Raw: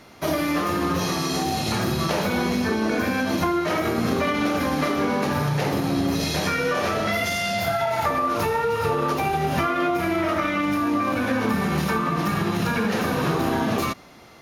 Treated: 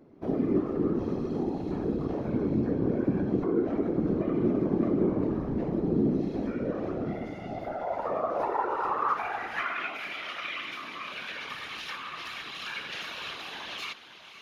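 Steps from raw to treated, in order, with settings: diffused feedback echo 0.55 s, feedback 42%, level -12.5 dB; band-pass sweep 290 Hz -> 3100 Hz, 7.42–10.17; whisperiser

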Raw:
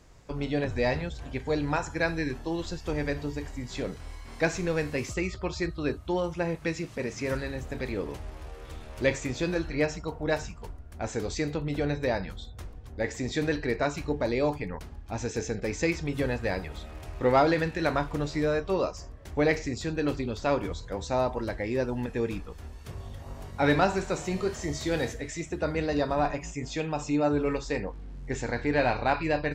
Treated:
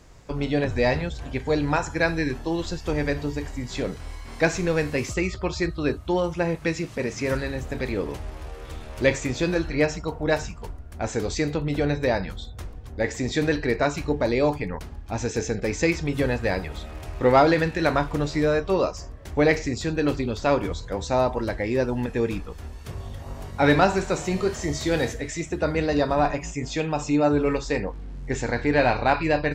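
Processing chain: 19.5–20.65 short-mantissa float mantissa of 8-bit; gain +5 dB

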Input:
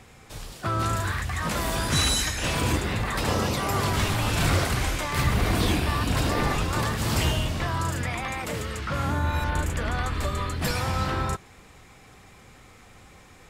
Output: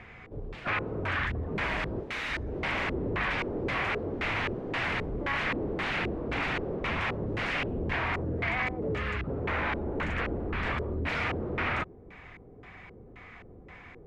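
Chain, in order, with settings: wavefolder -27 dBFS; speed mistake 25 fps video run at 24 fps; LFO low-pass square 1.9 Hz 420–2200 Hz

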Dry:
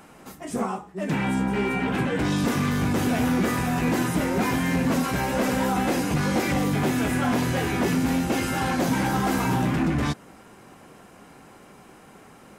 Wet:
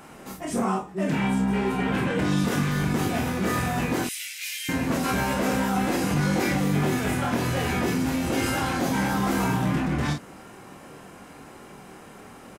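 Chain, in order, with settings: 4.04–4.69 steep high-pass 2300 Hz 36 dB/oct; in parallel at 0 dB: negative-ratio compressor -28 dBFS, ratio -1; on the sum: early reflections 26 ms -4.5 dB, 47 ms -7 dB; gain -6.5 dB

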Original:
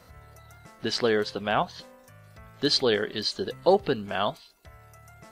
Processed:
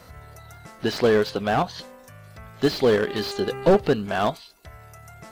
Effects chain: 3.06–3.78 buzz 400 Hz, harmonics 7, -41 dBFS -7 dB/oct; slew limiter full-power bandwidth 64 Hz; gain +6 dB

